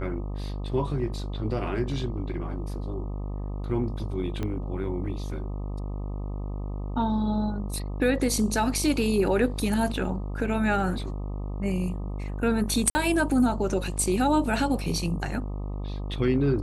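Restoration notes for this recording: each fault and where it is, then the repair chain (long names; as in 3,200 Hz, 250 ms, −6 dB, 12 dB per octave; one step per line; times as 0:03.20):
mains buzz 50 Hz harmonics 25 −32 dBFS
0:04.43: click −18 dBFS
0:12.90–0:12.95: drop-out 50 ms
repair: click removal
hum removal 50 Hz, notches 25
repair the gap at 0:12.90, 50 ms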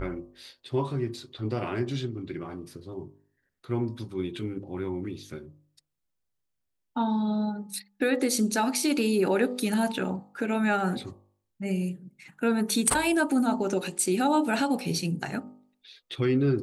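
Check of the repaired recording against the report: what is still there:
0:04.43: click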